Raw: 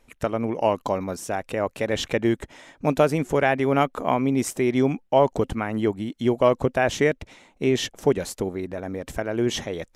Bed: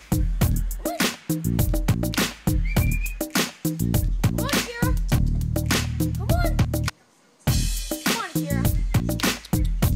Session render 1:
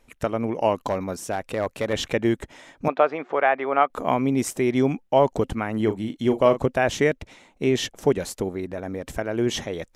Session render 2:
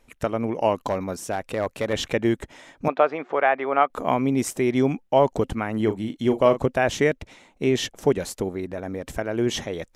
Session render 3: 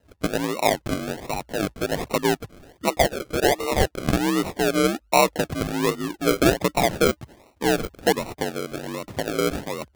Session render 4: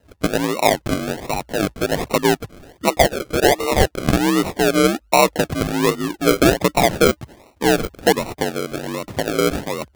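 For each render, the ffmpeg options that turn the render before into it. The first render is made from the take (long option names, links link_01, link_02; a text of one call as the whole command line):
ffmpeg -i in.wav -filter_complex "[0:a]asettb=1/sr,asplit=3[link_01][link_02][link_03];[link_01]atrim=end=0.774[link_04];[link_02]atrim=start=0.77:end=1.93,asetpts=PTS-STARTPTS,afade=type=in:duration=0.004:curve=qsin,afade=type=out:start_time=1.156:duration=0.004:curve=qsin,asoftclip=type=hard:threshold=-17dB[link_05];[link_03]atrim=start=1.926[link_06];[link_04][link_05]acrossfade=duration=0.004:curve1=hsin:curve2=qsin[link_07];[link_07][link_06]acrossfade=duration=0.004:curve1=qsin:curve2=hsin,asettb=1/sr,asplit=3[link_08][link_09][link_10];[link_08]atrim=end=2.884[link_11];[link_09]atrim=start=2.88:end=3.9,asetpts=PTS-STARTPTS,afade=type=in:duration=0.004:curve=qsin,afade=type=out:start_time=1.016:duration=0.004:curve=qsin,highpass=480,equalizer=frequency=730:width_type=q:width=4:gain=4,equalizer=frequency=1200:width_type=q:width=4:gain=6,equalizer=frequency=2900:width_type=q:width=4:gain=-5,lowpass=frequency=3300:width=0.5412,lowpass=frequency=3300:width=1.3066[link_12];[link_10]atrim=start=3.896[link_13];[link_11][link_12]acrossfade=duration=0.004:curve1=hsin:curve2=qsin[link_14];[link_14][link_13]acrossfade=duration=0.004:curve1=qsin:curve2=hsin,asettb=1/sr,asplit=3[link_15][link_16][link_17];[link_15]atrim=end=5.764[link_18];[link_16]atrim=start=5.76:end=6.66,asetpts=PTS-STARTPTS,afade=type=in:duration=0.004:curve=qsin,afade=type=out:start_time=0.896:duration=0.004:curve=qsin,asplit=2[link_19][link_20];[link_20]adelay=37,volume=-9.5dB[link_21];[link_19][link_21]amix=inputs=2:normalize=0,atrim=end_sample=39690[link_22];[link_17]atrim=start=6.656[link_23];[link_18][link_22]acrossfade=duration=0.004:curve1=hsin:curve2=qsin[link_24];[link_24][link_23]acrossfade=duration=0.004:curve1=qsin:curve2=hsin" out.wav
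ffmpeg -i in.wav -af anull out.wav
ffmpeg -i in.wav -af "afreqshift=50,acrusher=samples=38:mix=1:aa=0.000001:lfo=1:lforange=22.8:lforate=1.3" out.wav
ffmpeg -i in.wav -af "volume=5dB,alimiter=limit=-3dB:level=0:latency=1" out.wav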